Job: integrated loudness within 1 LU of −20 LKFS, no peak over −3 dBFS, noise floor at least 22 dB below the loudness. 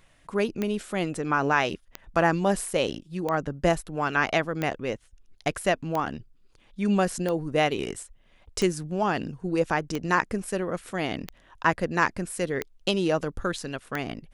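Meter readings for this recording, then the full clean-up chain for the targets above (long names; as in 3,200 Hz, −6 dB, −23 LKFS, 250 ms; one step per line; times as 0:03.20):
number of clicks 11; integrated loudness −27.5 LKFS; sample peak −6.5 dBFS; target loudness −20.0 LKFS
→ click removal
level +7.5 dB
brickwall limiter −3 dBFS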